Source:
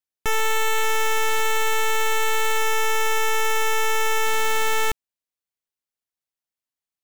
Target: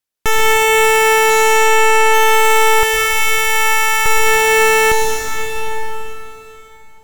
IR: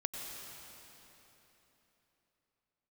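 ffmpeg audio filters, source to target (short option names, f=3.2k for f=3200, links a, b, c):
-filter_complex "[0:a]asettb=1/sr,asplit=3[a][b][c];[a]atrim=end=1.304[d];[b]atrim=start=1.3:end=2.14,asetpts=PTS-STARTPTS,afade=t=in:d=0.004:c=qsin,afade=t=out:st=0.836:d=0.004:c=qsin,adynamicsmooth=sensitivity=3.5:basefreq=2.5k[e];[c]atrim=start=2.136[f];[d][e]acrossfade=d=0.004:c1=hsin:c2=qsin[g];[g][f]acrossfade=d=0.004:c1=qsin:c2=hsin,asettb=1/sr,asplit=3[h][i][j];[h]atrim=end=2.834[k];[i]atrim=start=2.83:end=4.06,asetpts=PTS-STARTPTS,afade=t=in:d=0.004:c=qsin,afade=t=out:st=1.226:d=0.004:c=qsin,highpass=f=1k:w=0.5412,highpass=f=1k:w=1.3066[l];[j]atrim=start=4.056[m];[k][l]acrossfade=d=0.004:c1=hsin:c2=qsin[n];[n][m]acrossfade=d=0.004:c1=qsin:c2=hsin[o];[1:a]atrim=start_sample=2205,asetrate=37926,aresample=44100[p];[o][p]afir=irnorm=-1:irlink=0,volume=8.5dB"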